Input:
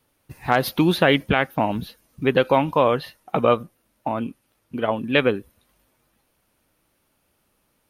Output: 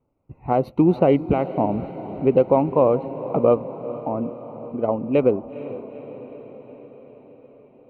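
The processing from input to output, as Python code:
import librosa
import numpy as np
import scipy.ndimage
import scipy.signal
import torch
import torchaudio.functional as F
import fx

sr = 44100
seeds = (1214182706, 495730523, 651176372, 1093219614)

y = fx.wiener(x, sr, points=9)
y = scipy.signal.lfilter(np.full(26, 1.0 / 26), 1.0, y)
y = fx.dynamic_eq(y, sr, hz=460.0, q=0.78, threshold_db=-29.0, ratio=4.0, max_db=4)
y = fx.echo_diffused(y, sr, ms=457, feedback_pct=64, wet_db=-14.0)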